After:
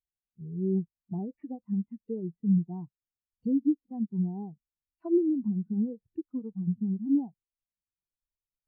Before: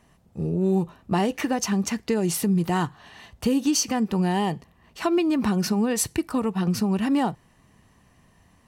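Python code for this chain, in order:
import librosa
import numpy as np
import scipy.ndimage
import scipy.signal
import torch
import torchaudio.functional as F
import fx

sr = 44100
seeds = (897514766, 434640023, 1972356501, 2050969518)

y = np.sign(x) * np.maximum(np.abs(x) - 10.0 ** (-45.5 / 20.0), 0.0)
y = fx.dmg_noise_colour(y, sr, seeds[0], colour='pink', level_db=-47.0)
y = fx.env_lowpass_down(y, sr, base_hz=940.0, full_db=-19.5)
y = fx.spectral_expand(y, sr, expansion=2.5)
y = y * 10.0 ** (-4.5 / 20.0)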